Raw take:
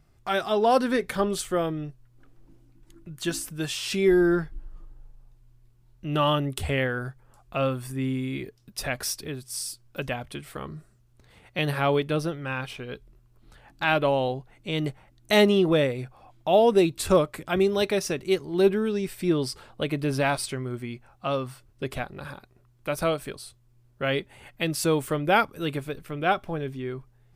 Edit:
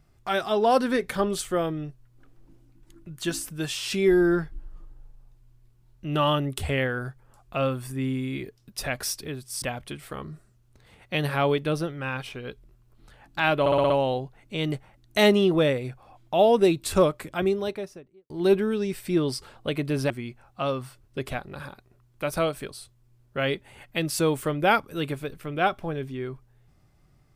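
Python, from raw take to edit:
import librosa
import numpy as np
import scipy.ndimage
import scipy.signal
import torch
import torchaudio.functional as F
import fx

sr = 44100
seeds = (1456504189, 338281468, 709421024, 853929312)

y = fx.studio_fade_out(x, sr, start_s=17.3, length_s=1.14)
y = fx.edit(y, sr, fx.cut(start_s=9.62, length_s=0.44),
    fx.stutter(start_s=14.04, slice_s=0.06, count=6),
    fx.cut(start_s=20.24, length_s=0.51), tone=tone)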